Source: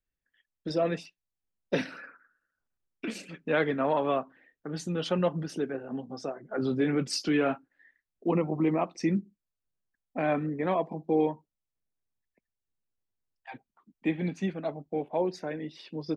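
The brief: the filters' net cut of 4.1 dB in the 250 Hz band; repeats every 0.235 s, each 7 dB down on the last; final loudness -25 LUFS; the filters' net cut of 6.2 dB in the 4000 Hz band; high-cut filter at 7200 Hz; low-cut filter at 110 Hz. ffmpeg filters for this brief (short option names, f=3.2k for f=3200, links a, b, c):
-af "highpass=110,lowpass=7.2k,equalizer=f=250:t=o:g=-5.5,equalizer=f=4k:t=o:g=-8,aecho=1:1:235|470|705|940|1175:0.447|0.201|0.0905|0.0407|0.0183,volume=7.5dB"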